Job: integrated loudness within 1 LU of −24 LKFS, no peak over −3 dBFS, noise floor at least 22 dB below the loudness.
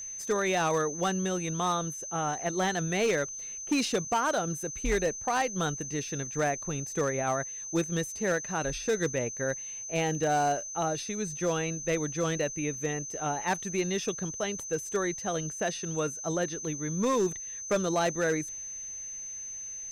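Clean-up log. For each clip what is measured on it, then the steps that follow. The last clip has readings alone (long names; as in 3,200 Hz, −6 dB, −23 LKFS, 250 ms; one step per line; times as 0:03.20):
share of clipped samples 0.7%; peaks flattened at −21.0 dBFS; interfering tone 6,200 Hz; level of the tone −37 dBFS; integrated loudness −30.5 LKFS; sample peak −21.0 dBFS; target loudness −24.0 LKFS
→ clipped peaks rebuilt −21 dBFS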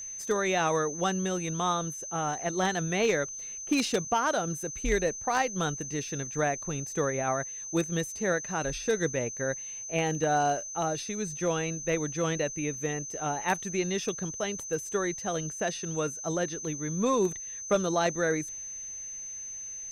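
share of clipped samples 0.0%; interfering tone 6,200 Hz; level of the tone −37 dBFS
→ notch filter 6,200 Hz, Q 30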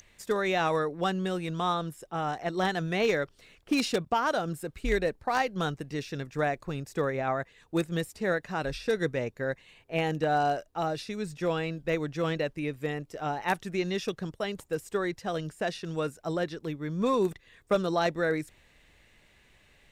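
interfering tone none found; integrated loudness −30.5 LKFS; sample peak −12.0 dBFS; target loudness −24.0 LKFS
→ level +6.5 dB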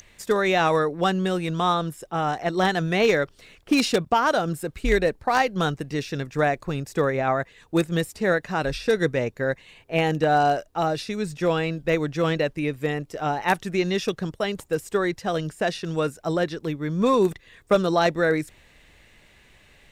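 integrated loudness −24.0 LKFS; sample peak −5.5 dBFS; background noise floor −56 dBFS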